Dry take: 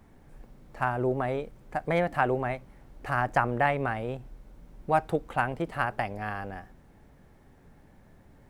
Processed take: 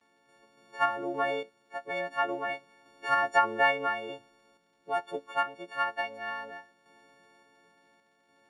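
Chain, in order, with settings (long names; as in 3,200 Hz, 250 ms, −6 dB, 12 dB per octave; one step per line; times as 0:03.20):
every partial snapped to a pitch grid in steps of 4 semitones
noise gate with hold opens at −48 dBFS
sample-and-hold tremolo, depth 70%
surface crackle 200 per second −62 dBFS
band-pass filter 360–5,200 Hz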